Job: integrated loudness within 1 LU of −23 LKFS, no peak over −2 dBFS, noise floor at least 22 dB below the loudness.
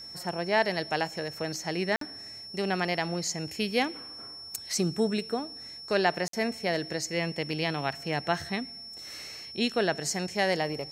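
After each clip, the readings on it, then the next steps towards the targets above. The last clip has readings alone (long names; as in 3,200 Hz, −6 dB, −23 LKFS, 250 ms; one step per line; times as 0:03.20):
number of dropouts 2; longest dropout 53 ms; interfering tone 5,400 Hz; level of the tone −41 dBFS; integrated loudness −30.0 LKFS; sample peak −10.0 dBFS; target loudness −23.0 LKFS
→ repair the gap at 0:01.96/0:06.28, 53 ms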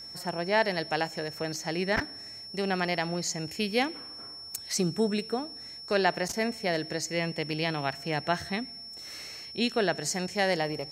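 number of dropouts 0; interfering tone 5,400 Hz; level of the tone −41 dBFS
→ notch filter 5,400 Hz, Q 30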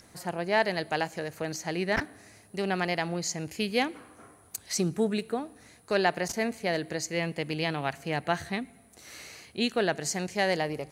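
interfering tone none found; integrated loudness −30.0 LKFS; sample peak −10.0 dBFS; target loudness −23.0 LKFS
→ level +7 dB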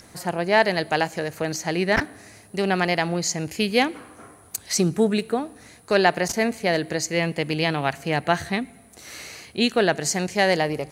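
integrated loudness −23.0 LKFS; sample peak −3.0 dBFS; background noise floor −50 dBFS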